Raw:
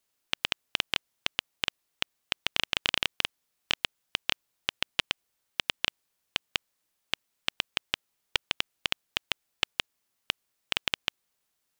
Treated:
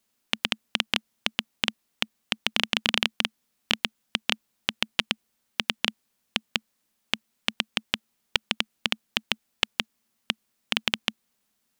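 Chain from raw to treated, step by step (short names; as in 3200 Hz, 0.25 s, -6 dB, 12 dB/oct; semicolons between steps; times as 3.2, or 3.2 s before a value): bell 220 Hz +13.5 dB 0.43 oct; gain +3.5 dB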